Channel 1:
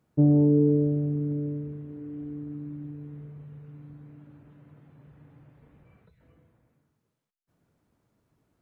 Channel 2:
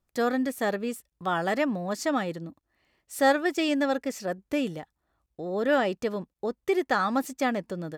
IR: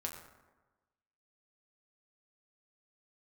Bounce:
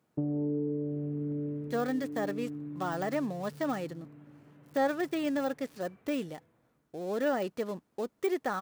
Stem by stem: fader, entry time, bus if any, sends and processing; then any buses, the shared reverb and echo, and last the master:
+0.5 dB, 0.00 s, no send, high-pass filter 160 Hz 6 dB per octave; downward compressor 4 to 1, threshold −30 dBFS, peak gain reduction 11 dB
−4.0 dB, 1.55 s, no send, gap after every zero crossing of 0.095 ms; de-essing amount 75%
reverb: not used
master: low-shelf EQ 75 Hz −11 dB

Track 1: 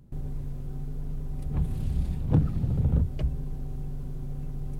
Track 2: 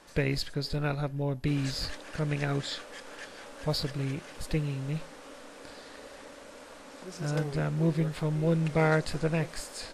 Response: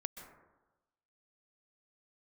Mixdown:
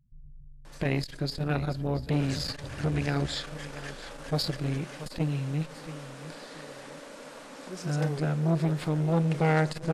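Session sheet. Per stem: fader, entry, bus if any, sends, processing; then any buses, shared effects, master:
−14.0 dB, 0.00 s, no send, no echo send, expanding power law on the bin magnitudes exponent 2.3
+1.5 dB, 0.65 s, send −14 dB, echo send −14.5 dB, low shelf with overshoot 110 Hz −7 dB, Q 1.5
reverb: on, RT60 1.1 s, pre-delay 118 ms
echo: repeating echo 682 ms, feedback 27%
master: saturating transformer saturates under 590 Hz

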